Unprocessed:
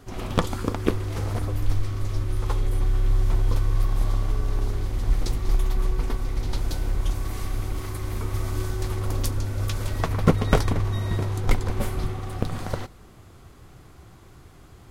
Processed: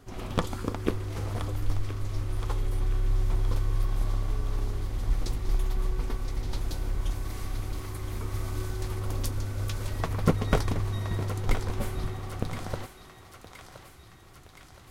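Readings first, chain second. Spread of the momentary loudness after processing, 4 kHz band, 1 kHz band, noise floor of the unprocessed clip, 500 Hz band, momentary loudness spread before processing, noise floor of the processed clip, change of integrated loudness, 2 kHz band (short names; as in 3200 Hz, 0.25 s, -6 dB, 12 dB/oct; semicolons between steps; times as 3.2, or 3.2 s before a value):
15 LU, -4.0 dB, -4.5 dB, -49 dBFS, -5.0 dB, 7 LU, -51 dBFS, -5.0 dB, -4.5 dB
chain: thinning echo 1.02 s, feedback 64%, high-pass 800 Hz, level -9 dB; gain -5 dB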